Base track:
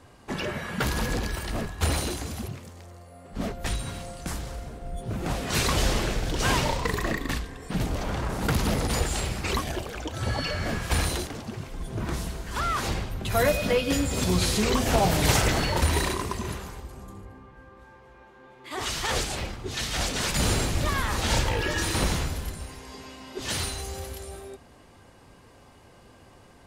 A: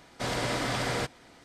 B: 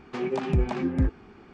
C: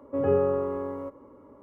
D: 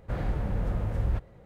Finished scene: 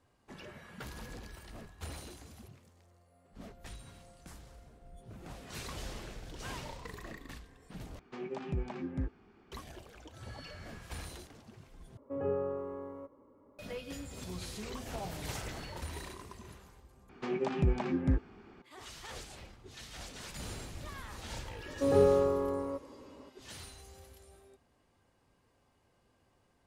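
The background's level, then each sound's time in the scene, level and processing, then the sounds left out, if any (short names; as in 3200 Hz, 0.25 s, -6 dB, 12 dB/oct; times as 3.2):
base track -18.5 dB
7.99 replace with B -12 dB
11.97 replace with C -10.5 dB
17.09 replace with B -5 dB
21.68 add C -1.5 dB
not used: A, D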